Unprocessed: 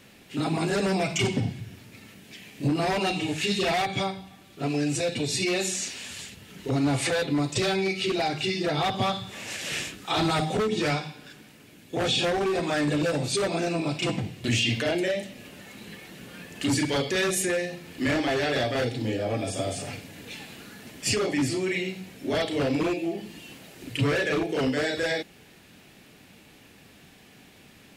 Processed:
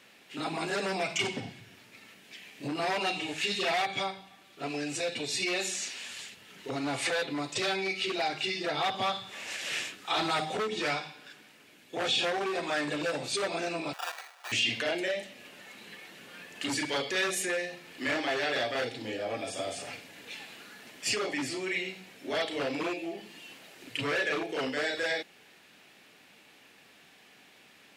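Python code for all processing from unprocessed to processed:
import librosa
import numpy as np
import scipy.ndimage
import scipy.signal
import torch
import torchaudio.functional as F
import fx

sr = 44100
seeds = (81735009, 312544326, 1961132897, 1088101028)

y = fx.chain(x, sr, fx.sample_hold(seeds[0], rate_hz=2100.0, jitter_pct=0),
    fx.highpass(hz=730.0, slope=24), at=(13.93, 14.52))
y = fx.highpass(y, sr, hz=820.0, slope=6)
y = fx.high_shelf(y, sr, hz=5800.0, db=-8.0)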